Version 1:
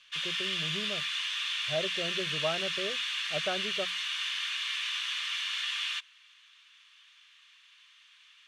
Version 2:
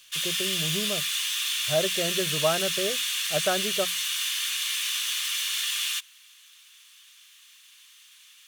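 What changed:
speech +7.5 dB
master: remove low-pass filter 3,000 Hz 12 dB per octave

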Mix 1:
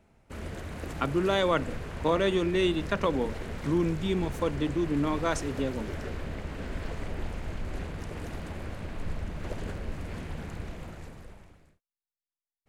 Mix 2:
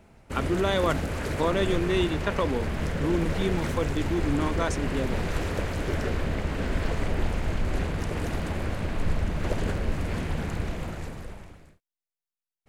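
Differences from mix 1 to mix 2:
speech: entry −0.65 s
background +8.0 dB

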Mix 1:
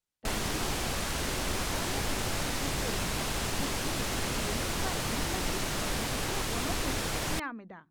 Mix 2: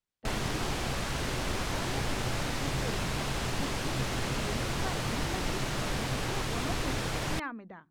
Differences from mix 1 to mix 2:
background: add parametric band 130 Hz +8.5 dB 0.21 octaves
master: add high-shelf EQ 7,400 Hz −10 dB

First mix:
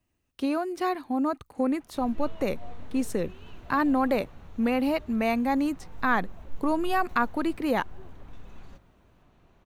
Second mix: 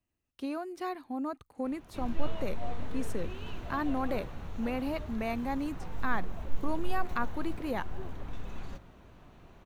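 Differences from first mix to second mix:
speech −8.5 dB
background +6.0 dB

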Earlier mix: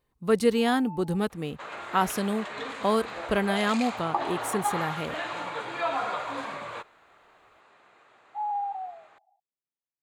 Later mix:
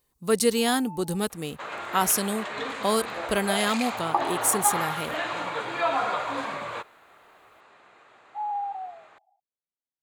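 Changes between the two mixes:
speech: add bass and treble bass −2 dB, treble +14 dB
second sound +3.5 dB

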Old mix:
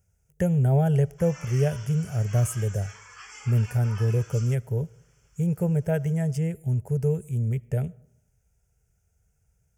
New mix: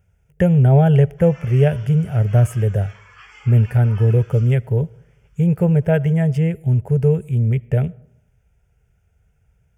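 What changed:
speech +8.5 dB
master: add high shelf with overshoot 4,400 Hz −11 dB, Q 1.5

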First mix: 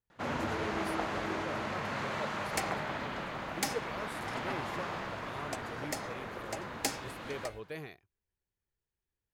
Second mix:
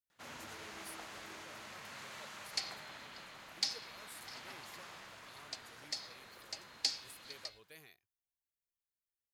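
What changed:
second sound: add low-pass with resonance 4,500 Hz, resonance Q 4.7
master: add first-order pre-emphasis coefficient 0.9

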